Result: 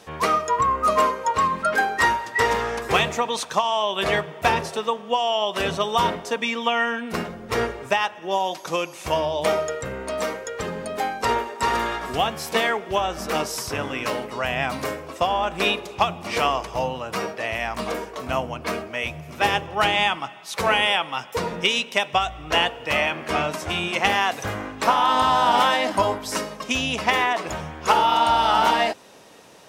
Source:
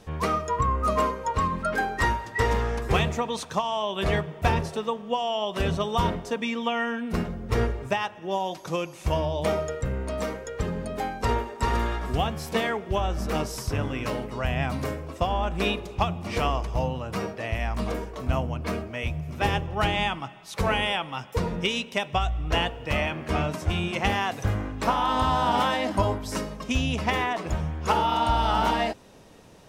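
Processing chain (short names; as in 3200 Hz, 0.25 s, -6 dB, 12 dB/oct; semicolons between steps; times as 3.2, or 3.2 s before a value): HPF 560 Hz 6 dB/oct; gain +7 dB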